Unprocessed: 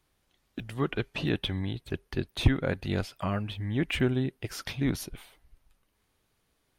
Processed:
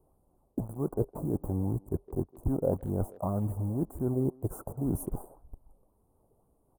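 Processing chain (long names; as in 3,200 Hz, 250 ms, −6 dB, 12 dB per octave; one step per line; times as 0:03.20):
high-shelf EQ 2,700 Hz −7 dB
reversed playback
downward compressor 6 to 1, threshold −39 dBFS, peak gain reduction 22 dB
reversed playback
high-shelf EQ 8,100 Hz −2.5 dB
in parallel at −4 dB: bit reduction 8 bits
on the sum: inverse Chebyshev band-stop filter 2,000–4,600 Hz, stop band 60 dB
far-end echo of a speakerphone 160 ms, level −19 dB
auto-filter bell 1.9 Hz 440–3,700 Hz +8 dB
level +6.5 dB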